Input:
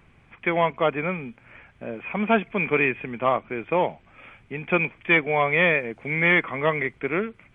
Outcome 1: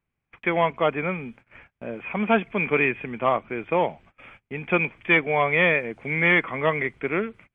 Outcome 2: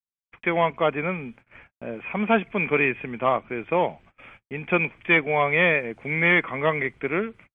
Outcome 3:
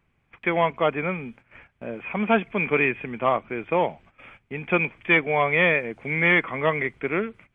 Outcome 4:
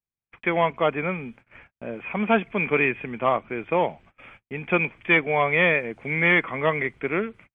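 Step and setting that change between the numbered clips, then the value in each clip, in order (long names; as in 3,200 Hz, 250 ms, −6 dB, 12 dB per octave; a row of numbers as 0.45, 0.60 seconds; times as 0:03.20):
noise gate, range: −26, −59, −13, −43 decibels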